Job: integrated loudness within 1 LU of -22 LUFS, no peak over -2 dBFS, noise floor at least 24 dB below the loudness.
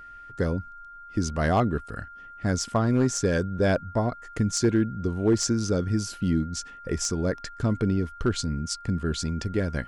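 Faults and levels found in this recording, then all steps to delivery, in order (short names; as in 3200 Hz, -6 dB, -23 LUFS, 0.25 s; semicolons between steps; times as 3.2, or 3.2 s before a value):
clipped 0.3%; flat tops at -14.0 dBFS; steady tone 1400 Hz; tone level -42 dBFS; loudness -26.5 LUFS; peak -14.0 dBFS; loudness target -22.0 LUFS
-> clip repair -14 dBFS; notch 1400 Hz, Q 30; gain +4.5 dB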